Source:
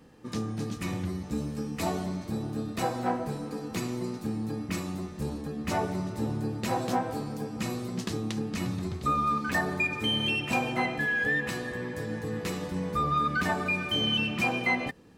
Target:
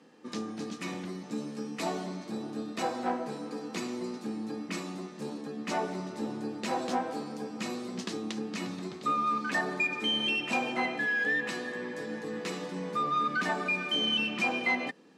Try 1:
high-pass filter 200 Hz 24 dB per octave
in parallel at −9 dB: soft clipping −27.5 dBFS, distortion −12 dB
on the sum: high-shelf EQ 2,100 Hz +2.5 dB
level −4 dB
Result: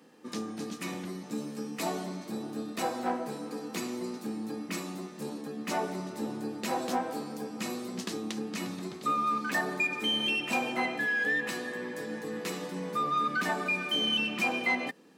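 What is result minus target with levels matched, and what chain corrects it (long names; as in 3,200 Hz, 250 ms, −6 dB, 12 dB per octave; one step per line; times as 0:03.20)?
8,000 Hz band +3.0 dB
high-pass filter 200 Hz 24 dB per octave
in parallel at −9 dB: soft clipping −27.5 dBFS, distortion −12 dB
on the sum: low-pass filter 7,200 Hz 12 dB per octave
high-shelf EQ 2,100 Hz +2.5 dB
level −4 dB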